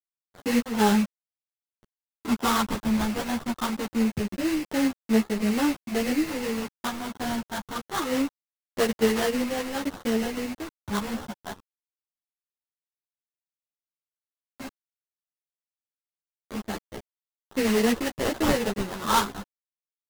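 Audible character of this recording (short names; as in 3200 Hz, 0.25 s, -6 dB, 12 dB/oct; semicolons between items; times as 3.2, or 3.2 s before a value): a quantiser's noise floor 6-bit, dither none; phasing stages 8, 0.24 Hz, lowest notch 430–2100 Hz; aliases and images of a low sample rate 2400 Hz, jitter 20%; a shimmering, thickened sound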